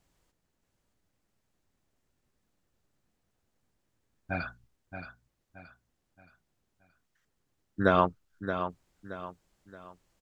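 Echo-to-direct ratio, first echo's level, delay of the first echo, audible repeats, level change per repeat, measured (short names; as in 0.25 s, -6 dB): -8.5 dB, -9.0 dB, 0.624 s, 4, -8.5 dB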